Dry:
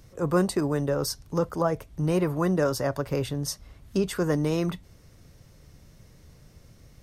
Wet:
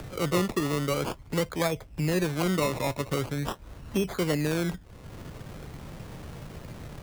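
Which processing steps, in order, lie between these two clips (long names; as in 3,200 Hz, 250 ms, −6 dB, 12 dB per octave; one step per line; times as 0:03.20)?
in parallel at +1 dB: upward compression, threshold −28 dBFS
on the sum: sample-and-hold swept by an LFO 22×, swing 60% 0.44 Hz
multiband upward and downward compressor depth 40%
level −8.5 dB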